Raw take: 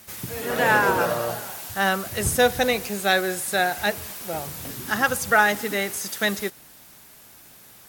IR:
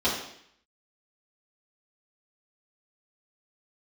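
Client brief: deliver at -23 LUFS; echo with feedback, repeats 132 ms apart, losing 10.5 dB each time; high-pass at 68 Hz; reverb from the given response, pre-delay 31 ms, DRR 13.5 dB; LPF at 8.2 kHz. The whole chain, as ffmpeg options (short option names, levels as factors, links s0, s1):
-filter_complex "[0:a]highpass=68,lowpass=8200,aecho=1:1:132|264|396:0.299|0.0896|0.0269,asplit=2[s0][s1];[1:a]atrim=start_sample=2205,adelay=31[s2];[s1][s2]afir=irnorm=-1:irlink=0,volume=0.0473[s3];[s0][s3]amix=inputs=2:normalize=0,volume=0.944"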